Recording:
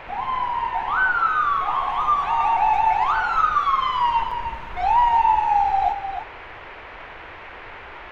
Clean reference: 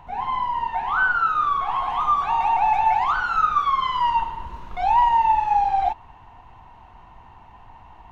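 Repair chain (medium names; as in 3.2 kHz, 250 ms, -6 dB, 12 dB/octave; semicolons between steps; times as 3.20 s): interpolate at 4.31 s, 4.5 ms; noise print and reduce 8 dB; inverse comb 305 ms -8.5 dB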